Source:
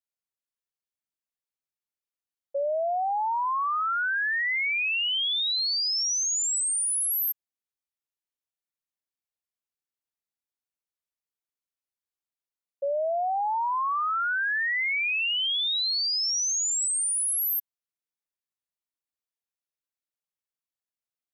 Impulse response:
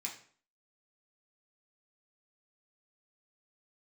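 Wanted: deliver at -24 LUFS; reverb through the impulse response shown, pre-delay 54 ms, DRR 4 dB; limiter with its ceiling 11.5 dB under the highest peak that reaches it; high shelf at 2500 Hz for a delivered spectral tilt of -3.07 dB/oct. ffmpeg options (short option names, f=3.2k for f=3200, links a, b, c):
-filter_complex "[0:a]highshelf=f=2.5k:g=6.5,alimiter=level_in=5dB:limit=-24dB:level=0:latency=1,volume=-5dB,asplit=2[a][b];[1:a]atrim=start_sample=2205,adelay=54[c];[b][c]afir=irnorm=-1:irlink=0,volume=-3.5dB[d];[a][d]amix=inputs=2:normalize=0,volume=4.5dB"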